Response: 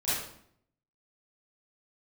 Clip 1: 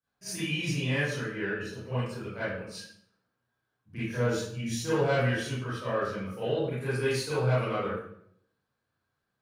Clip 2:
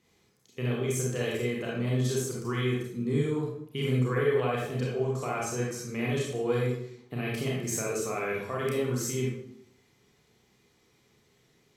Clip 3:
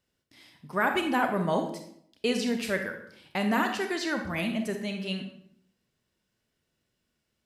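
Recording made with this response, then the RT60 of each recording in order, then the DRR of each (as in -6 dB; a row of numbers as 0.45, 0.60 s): 1; 0.65, 0.65, 0.65 s; -14.0, -4.5, 5.0 dB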